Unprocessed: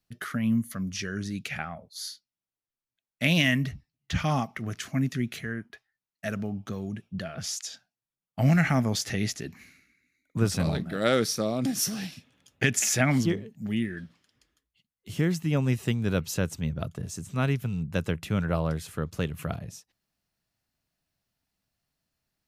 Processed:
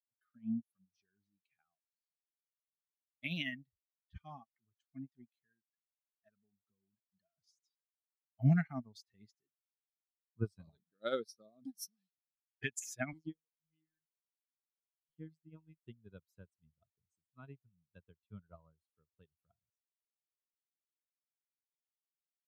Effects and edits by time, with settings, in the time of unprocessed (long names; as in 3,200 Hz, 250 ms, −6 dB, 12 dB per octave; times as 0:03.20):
0:01.91–0:03.23: downward compressor 2 to 1, threshold −58 dBFS
0:13.13–0:15.79: phases set to zero 158 Hz
whole clip: spectral dynamics exaggerated over time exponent 2; expander for the loud parts 2.5 to 1, over −43 dBFS; level −3 dB